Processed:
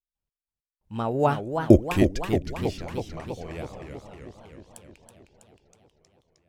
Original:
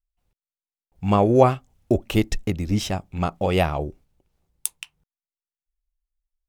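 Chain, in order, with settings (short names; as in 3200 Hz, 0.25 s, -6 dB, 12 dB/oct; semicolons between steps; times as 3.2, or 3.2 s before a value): Doppler pass-by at 1.66, 40 m/s, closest 3.8 m; warbling echo 0.318 s, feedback 67%, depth 217 cents, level -6.5 dB; gain +7 dB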